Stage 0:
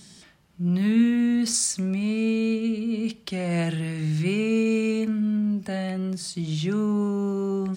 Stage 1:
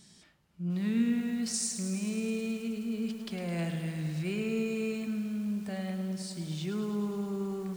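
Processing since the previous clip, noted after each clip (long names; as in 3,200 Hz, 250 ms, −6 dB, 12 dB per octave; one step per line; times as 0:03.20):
feedback echo at a low word length 106 ms, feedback 80%, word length 7 bits, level −9.5 dB
level −9 dB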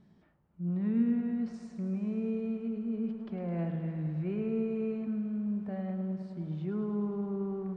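low-pass filter 1,100 Hz 12 dB per octave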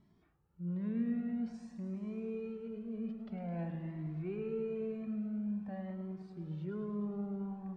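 flanger whose copies keep moving one way rising 0.5 Hz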